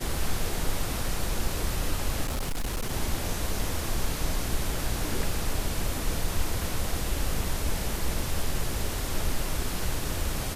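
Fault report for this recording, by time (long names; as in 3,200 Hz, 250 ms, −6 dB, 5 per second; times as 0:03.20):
0:02.23–0:02.93: clipping −25.5 dBFS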